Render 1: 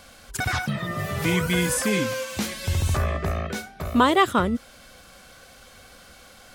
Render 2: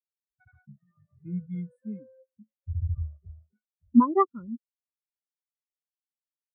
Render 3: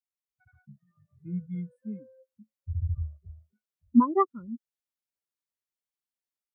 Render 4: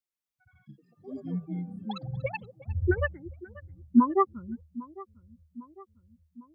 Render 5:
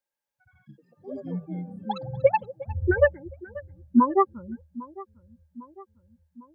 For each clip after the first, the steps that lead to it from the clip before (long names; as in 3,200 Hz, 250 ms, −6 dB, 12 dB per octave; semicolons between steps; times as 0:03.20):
every bin expanded away from the loudest bin 4 to 1; level −1.5 dB
automatic gain control gain up to 5 dB; level −5.5 dB
feedback echo with a low-pass in the loop 802 ms, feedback 56%, low-pass 1,800 Hz, level −19 dB; delay with pitch and tempo change per echo 240 ms, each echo +7 semitones, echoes 3, each echo −6 dB
hollow resonant body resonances 560/860/1,600 Hz, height 17 dB, ringing for 45 ms